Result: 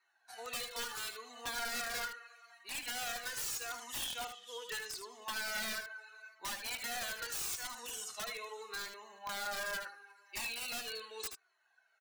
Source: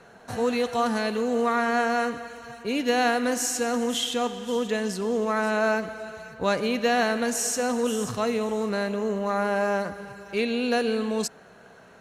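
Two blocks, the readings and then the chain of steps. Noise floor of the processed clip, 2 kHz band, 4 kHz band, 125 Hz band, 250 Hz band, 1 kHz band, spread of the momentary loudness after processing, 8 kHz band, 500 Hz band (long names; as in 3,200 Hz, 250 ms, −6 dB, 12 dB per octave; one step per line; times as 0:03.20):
−74 dBFS, −10.5 dB, −7.5 dB, −23.5 dB, −31.0 dB, −17.0 dB, 10 LU, −8.5 dB, −24.5 dB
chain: spectral dynamics exaggerated over time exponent 1.5
high-pass filter 1,500 Hz 12 dB per octave
comb filter 2.7 ms, depth 44%
in parallel at −2 dB: brickwall limiter −28.5 dBFS, peak gain reduction 11 dB
on the sum: downward compressor 3 to 1, threshold −31 dBFS, peak gain reduction 6.5 dB
wrap-around overflow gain 28 dB
on a send: single-tap delay 77 ms −8 dB
on the sum: flanger whose copies keep moving one way falling 0.78 Hz
level −1 dB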